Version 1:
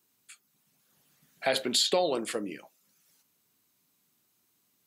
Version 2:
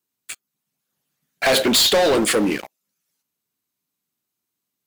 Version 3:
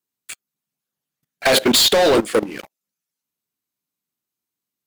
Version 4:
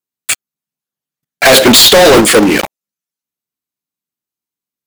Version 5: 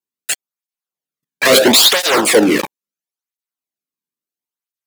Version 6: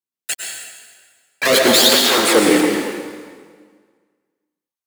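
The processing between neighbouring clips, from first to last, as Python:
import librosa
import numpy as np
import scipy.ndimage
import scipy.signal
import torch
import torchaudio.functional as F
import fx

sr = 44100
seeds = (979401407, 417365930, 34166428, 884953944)

y1 = fx.leveller(x, sr, passes=5)
y1 = y1 * 10.0 ** (1.0 / 20.0)
y2 = fx.level_steps(y1, sr, step_db=18)
y2 = y2 * 10.0 ** (4.5 / 20.0)
y3 = fx.leveller(y2, sr, passes=5)
y3 = y3 * 10.0 ** (6.5 / 20.0)
y4 = fx.flanger_cancel(y3, sr, hz=0.74, depth_ms=1.6)
y4 = y4 * 10.0 ** (-1.5 / 20.0)
y5 = fx.rev_plate(y4, sr, seeds[0], rt60_s=1.7, hf_ratio=0.85, predelay_ms=90, drr_db=0.5)
y5 = y5 * 10.0 ** (-4.5 / 20.0)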